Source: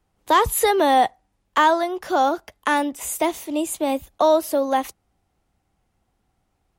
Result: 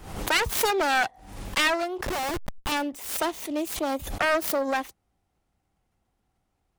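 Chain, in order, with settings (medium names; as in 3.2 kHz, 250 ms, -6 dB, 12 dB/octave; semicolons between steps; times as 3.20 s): self-modulated delay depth 0.39 ms; 2.06–2.72 s: Schmitt trigger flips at -31 dBFS; swell ahead of each attack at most 74 dB/s; trim -5 dB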